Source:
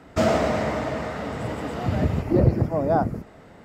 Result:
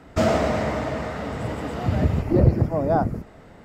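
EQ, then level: bass shelf 64 Hz +8 dB; 0.0 dB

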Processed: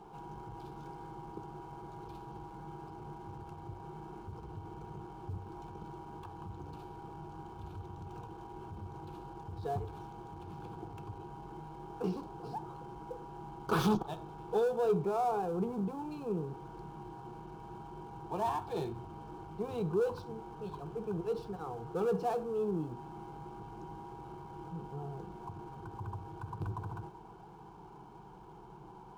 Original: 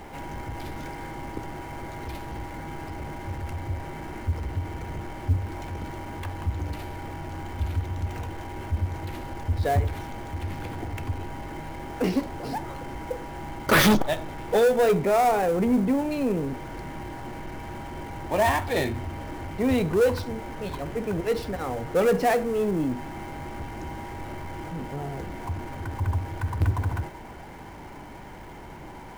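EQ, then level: high-pass 40 Hz; low-pass 2 kHz 6 dB/octave; static phaser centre 390 Hz, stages 8; -7.0 dB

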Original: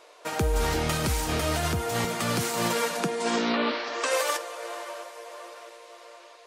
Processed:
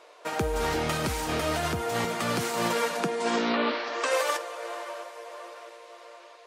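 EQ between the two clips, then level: bass shelf 120 Hz -10.5 dB; treble shelf 4.1 kHz -6.5 dB; +1.0 dB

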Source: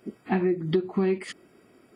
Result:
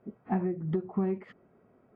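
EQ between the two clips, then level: low-pass 1 kHz 12 dB/octave; peaking EQ 320 Hz -10.5 dB 0.54 oct; -1.5 dB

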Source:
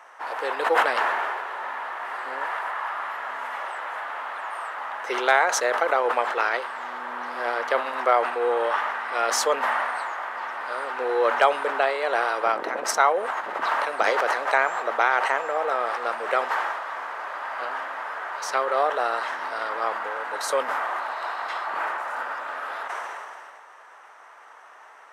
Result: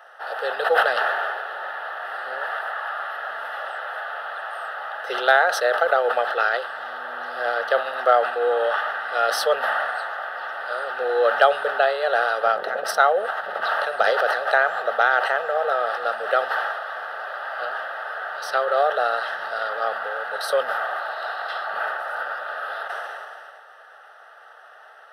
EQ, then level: static phaser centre 1.5 kHz, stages 8; +4.5 dB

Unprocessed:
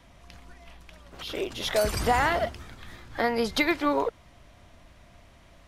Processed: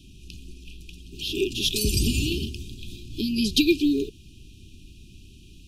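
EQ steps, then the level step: brick-wall FIR band-stop 420–2400 Hz; +7.5 dB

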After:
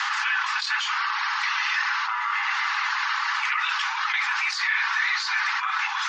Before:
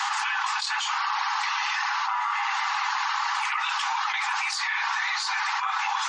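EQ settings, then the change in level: Chebyshev band-pass 1.5–5.8 kHz, order 2; treble shelf 4 kHz -10 dB; +6.5 dB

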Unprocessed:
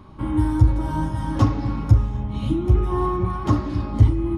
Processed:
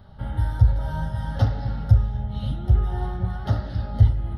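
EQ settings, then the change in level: static phaser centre 1.6 kHz, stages 8; 0.0 dB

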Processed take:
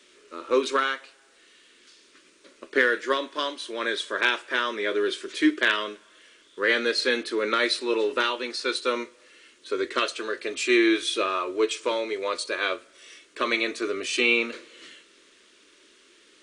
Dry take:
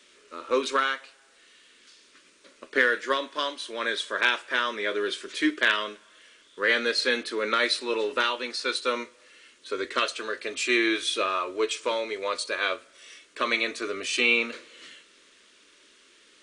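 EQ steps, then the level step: peaking EQ 350 Hz +6 dB 0.61 oct; 0.0 dB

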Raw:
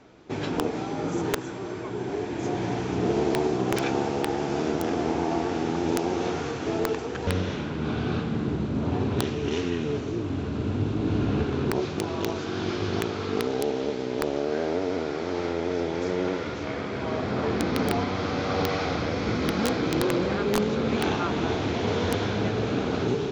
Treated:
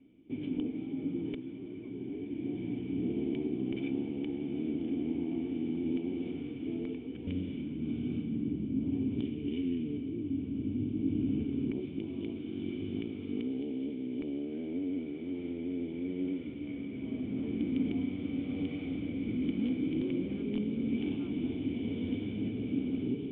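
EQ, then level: cascade formant filter i; 0.0 dB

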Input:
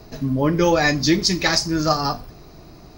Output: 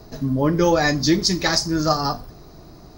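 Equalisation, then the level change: peaking EQ 2.5 kHz -6.5 dB 0.67 oct; 0.0 dB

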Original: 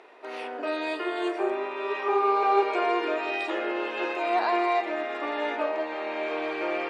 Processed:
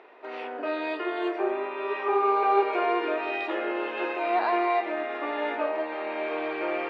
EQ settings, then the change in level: low-pass 3.2 kHz 12 dB/octave; 0.0 dB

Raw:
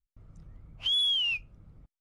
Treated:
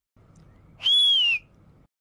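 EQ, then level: high-pass 270 Hz 6 dB/octave; +7.5 dB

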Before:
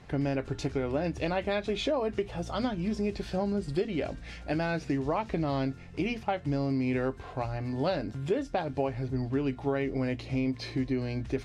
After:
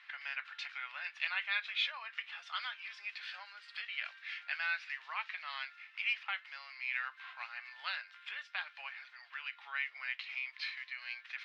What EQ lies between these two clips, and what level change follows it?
Bessel high-pass 2.4 kHz, order 6; distance through air 370 m; treble shelf 6.9 kHz -8.5 dB; +13.5 dB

